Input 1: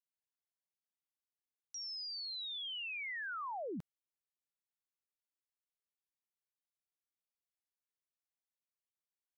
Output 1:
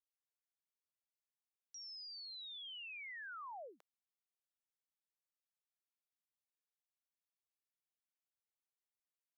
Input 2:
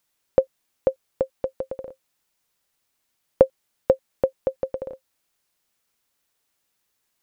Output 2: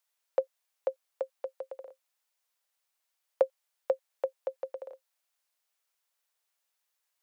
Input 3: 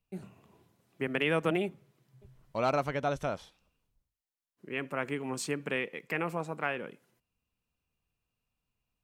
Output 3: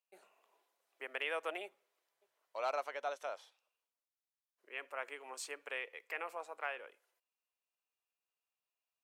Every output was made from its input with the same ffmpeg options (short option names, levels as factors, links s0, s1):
-af "highpass=f=520:w=0.5412,highpass=f=520:w=1.3066,volume=0.447"